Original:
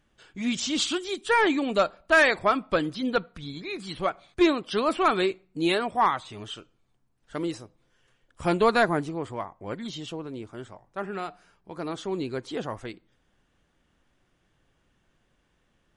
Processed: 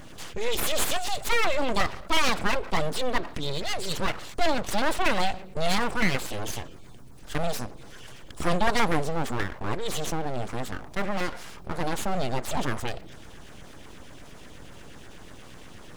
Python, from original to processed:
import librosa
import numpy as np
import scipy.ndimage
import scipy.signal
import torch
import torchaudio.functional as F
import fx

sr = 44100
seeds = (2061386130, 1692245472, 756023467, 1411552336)

y = fx.filter_lfo_notch(x, sr, shape='saw_down', hz=8.3, low_hz=700.0, high_hz=4100.0, q=1.0)
y = np.abs(y)
y = fx.env_flatten(y, sr, amount_pct=50)